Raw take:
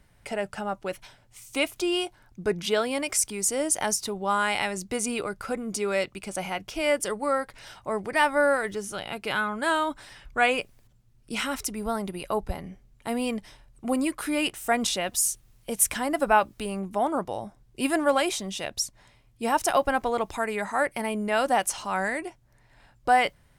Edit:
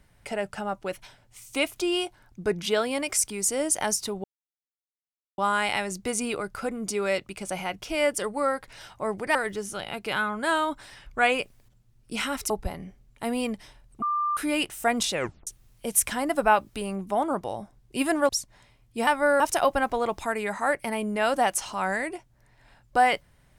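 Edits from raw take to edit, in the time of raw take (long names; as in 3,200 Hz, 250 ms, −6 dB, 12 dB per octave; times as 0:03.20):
0:04.24: splice in silence 1.14 s
0:08.21–0:08.54: move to 0:19.52
0:11.69–0:12.34: remove
0:13.86–0:14.21: beep over 1,190 Hz −23 dBFS
0:14.97: tape stop 0.34 s
0:18.13–0:18.74: remove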